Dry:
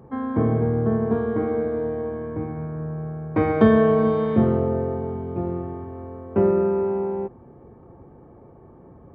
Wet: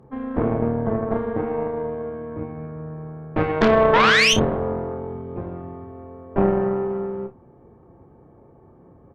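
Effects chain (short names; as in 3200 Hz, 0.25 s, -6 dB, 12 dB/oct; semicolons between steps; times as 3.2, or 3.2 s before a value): painted sound rise, 3.93–4.34, 850–3300 Hz -15 dBFS; added harmonics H 6 -7 dB, 8 -16 dB, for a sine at -4 dBFS; on a send: early reflections 30 ms -8.5 dB, 59 ms -18 dB; on the sum: gain -3.5 dB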